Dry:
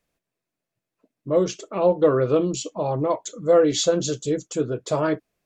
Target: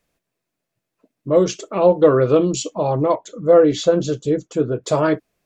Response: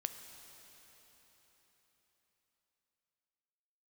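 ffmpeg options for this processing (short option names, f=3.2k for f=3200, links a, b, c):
-filter_complex "[0:a]asettb=1/sr,asplit=3[a][b][c];[a]atrim=end=3.154[d];[b]atrim=start=3.15:end=4.84,asetpts=PTS-STARTPTS,afade=t=in:d=0.004:c=qsin,afade=t=out:st=1.686:d=0.004:c=qsin,lowpass=f=1.7k:p=1[e];[c]atrim=start=4.836[f];[d][e]acrossfade=d=0.004:c1=hsin:c2=qsin[g];[g][f]acrossfade=d=0.004:c1=qsin:c2=hsin,volume=5dB"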